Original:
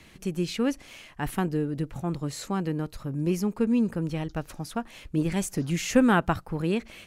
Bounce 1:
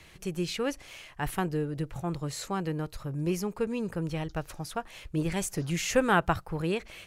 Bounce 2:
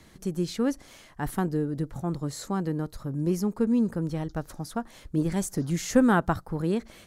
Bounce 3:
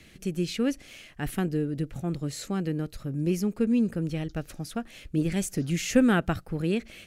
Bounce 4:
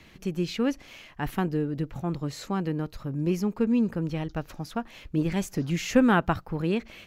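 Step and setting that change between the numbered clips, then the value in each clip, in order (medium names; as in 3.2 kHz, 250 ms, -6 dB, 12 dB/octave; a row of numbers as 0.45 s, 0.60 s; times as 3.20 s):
peaking EQ, frequency: 240 Hz, 2.6 kHz, 970 Hz, 9.2 kHz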